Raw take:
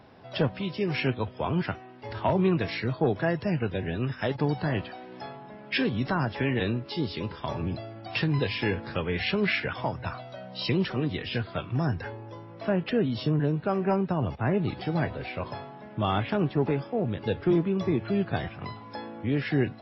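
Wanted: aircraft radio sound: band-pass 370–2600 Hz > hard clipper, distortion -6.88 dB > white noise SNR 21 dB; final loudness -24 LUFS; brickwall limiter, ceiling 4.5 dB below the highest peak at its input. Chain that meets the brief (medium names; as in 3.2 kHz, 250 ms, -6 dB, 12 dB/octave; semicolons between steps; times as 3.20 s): peak limiter -18.5 dBFS; band-pass 370–2600 Hz; hard clipper -34 dBFS; white noise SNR 21 dB; trim +14.5 dB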